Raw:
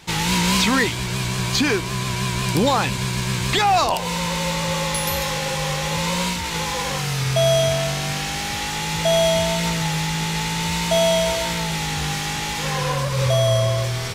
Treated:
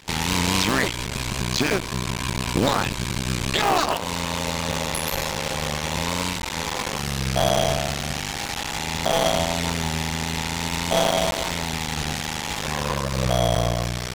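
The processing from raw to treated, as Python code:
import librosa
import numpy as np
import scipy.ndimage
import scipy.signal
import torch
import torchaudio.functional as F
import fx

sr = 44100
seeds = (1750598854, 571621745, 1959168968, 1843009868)

y = fx.cycle_switch(x, sr, every=2, mode='muted')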